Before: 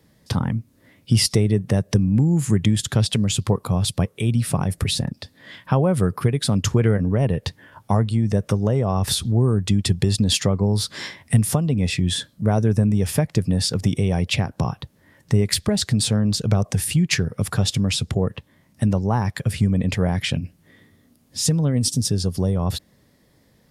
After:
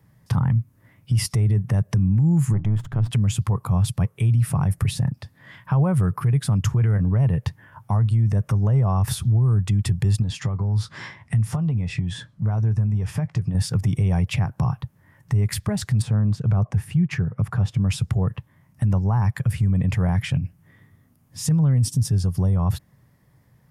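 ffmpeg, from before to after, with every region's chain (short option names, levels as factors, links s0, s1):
-filter_complex "[0:a]asettb=1/sr,asplit=3[s0][s1][s2];[s0]atrim=end=2.534[s3];[s1]atrim=start=2.53:end=3.11,asetpts=PTS-STARTPTS,afade=t=in:d=0.004:c=qsin,afade=t=out:st=0.576:d=0.004:c=qsin,aeval=exprs='if(lt(val(0),0),0.251*val(0),val(0))':c=same,lowpass=f=1200:p=1,bandreject=f=60:t=h:w=6,bandreject=f=120:t=h:w=6,bandreject=f=180:t=h:w=6,bandreject=f=240:t=h:w=6,bandreject=f=300:t=h:w=6[s4];[s2]atrim=start=3.106[s5];[s3][s4]acrossfade=d=0.004:c1=hsin:c2=qsin[s6];[s6][s5]acrossfade=d=0.004:c1=qsin:c2=hsin,asettb=1/sr,asplit=3[s7][s8][s9];[s7]atrim=end=10.224[s10];[s8]atrim=start=10.22:end=13.55,asetpts=PTS-STARTPTS,afade=t=in:d=0.004:c=qsin,afade=t=out:st=3.326:d=0.004:c=qsin,lowpass=6300,acompressor=threshold=0.0794:ratio=4:attack=3.2:release=140:knee=1:detection=peak,asplit=2[s11][s12];[s12]adelay=18,volume=0.224[s13];[s11][s13]amix=inputs=2:normalize=0,atrim=end_sample=146853[s14];[s9]atrim=start=13.546[s15];[s10][s14]acrossfade=d=0.004:c1=hsin:c2=qsin[s16];[s16][s15]acrossfade=d=0.004:c1=qsin:c2=hsin,asettb=1/sr,asplit=3[s17][s18][s19];[s17]atrim=end=16.024[s20];[s18]atrim=start=16.02:end=17.86,asetpts=PTS-STARTPTS,afade=t=in:d=0.004:c=qsin,afade=t=out:st=1.836:d=0.004:c=qsin,lowpass=f=1600:p=1,equalizer=f=69:w=1.6:g=-5.5[s21];[s19]atrim=start=17.856[s22];[s20][s21]acrossfade=d=0.004:c1=hsin:c2=qsin[s23];[s23][s22]acrossfade=d=0.004:c1=qsin:c2=hsin,equalizer=f=125:t=o:w=1:g=10,equalizer=f=250:t=o:w=1:g=-6,equalizer=f=500:t=o:w=1:g=-6,equalizer=f=1000:t=o:w=1:g=4,equalizer=f=4000:t=o:w=1:g=-10,equalizer=f=8000:t=o:w=1:g=-4,alimiter=limit=0.266:level=0:latency=1:release=19,volume=0.841"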